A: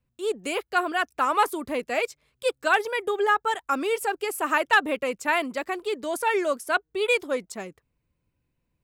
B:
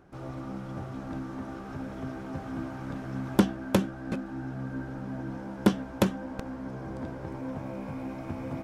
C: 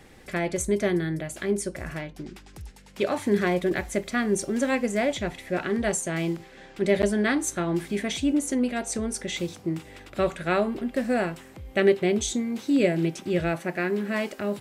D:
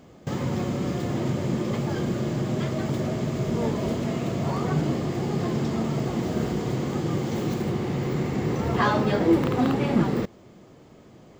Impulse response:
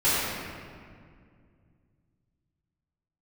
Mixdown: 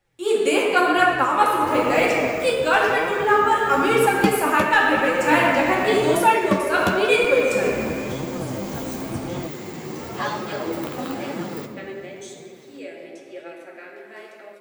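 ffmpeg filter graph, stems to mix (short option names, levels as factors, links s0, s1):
-filter_complex "[0:a]volume=1.06,asplit=2[s0][s1];[s1]volume=0.316[s2];[1:a]adelay=850,volume=1.19[s3];[2:a]highpass=f=360:w=0.5412,highpass=f=360:w=1.3066,volume=0.106,asplit=2[s4][s5];[s5]volume=0.2[s6];[3:a]aemphasis=mode=production:type=bsi,adelay=1400,volume=0.316,asplit=2[s7][s8];[s8]volume=0.0944[s9];[4:a]atrim=start_sample=2205[s10];[s2][s6][s9]amix=inputs=3:normalize=0[s11];[s11][s10]afir=irnorm=-1:irlink=0[s12];[s0][s3][s4][s7][s12]amix=inputs=5:normalize=0,dynaudnorm=f=160:g=3:m=2.51,flanger=delay=5.5:depth=7.8:regen=38:speed=0.96:shape=sinusoidal"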